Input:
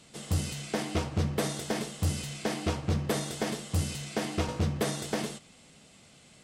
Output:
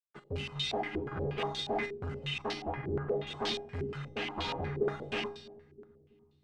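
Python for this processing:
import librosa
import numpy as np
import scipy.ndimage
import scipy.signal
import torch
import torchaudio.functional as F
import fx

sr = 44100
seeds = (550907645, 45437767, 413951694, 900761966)

p1 = fx.bin_expand(x, sr, power=2.0)
p2 = fx.chopper(p1, sr, hz=1.8, depth_pct=60, duty_pct=35)
p3 = fx.fuzz(p2, sr, gain_db=53.0, gate_db=-56.0)
p4 = fx.air_absorb(p3, sr, metres=360.0, at=(2.53, 3.27))
p5 = fx.comb_fb(p4, sr, f0_hz=410.0, decay_s=0.57, harmonics='all', damping=0.0, mix_pct=90)
p6 = p5 + fx.echo_bbd(p5, sr, ms=325, stages=1024, feedback_pct=68, wet_db=-21, dry=0)
p7 = fx.rev_double_slope(p6, sr, seeds[0], early_s=0.84, late_s=3.0, knee_db=-19, drr_db=12.5)
p8 = fx.filter_held_lowpass(p7, sr, hz=8.4, low_hz=380.0, high_hz=3800.0)
y = p8 * librosa.db_to_amplitude(-4.5)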